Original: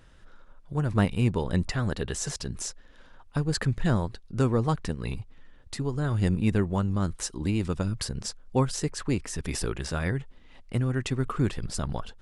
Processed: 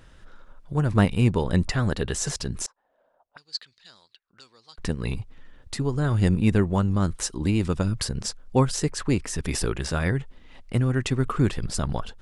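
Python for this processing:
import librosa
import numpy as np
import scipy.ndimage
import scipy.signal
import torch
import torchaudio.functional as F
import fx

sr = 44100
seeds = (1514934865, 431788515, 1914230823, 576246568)

y = fx.auto_wah(x, sr, base_hz=540.0, top_hz=4500.0, q=6.2, full_db=-24.0, direction='up', at=(2.66, 4.78))
y = y * librosa.db_to_amplitude(4.0)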